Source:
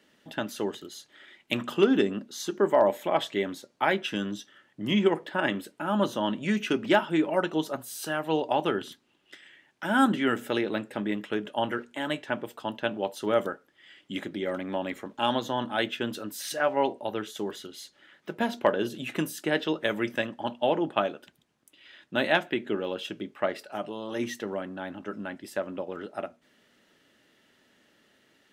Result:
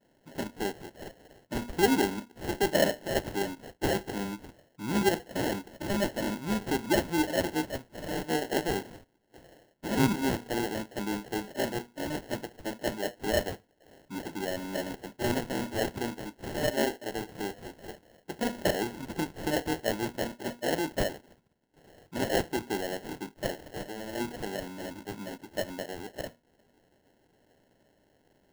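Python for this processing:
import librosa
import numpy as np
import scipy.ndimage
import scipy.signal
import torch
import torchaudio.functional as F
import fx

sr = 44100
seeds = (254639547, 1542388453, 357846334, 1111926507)

y = fx.spec_delay(x, sr, highs='late', ms=111)
y = fx.peak_eq(y, sr, hz=6800.0, db=10.5, octaves=0.35)
y = fx.sample_hold(y, sr, seeds[0], rate_hz=1200.0, jitter_pct=0)
y = y * librosa.db_to_amplitude(-2.5)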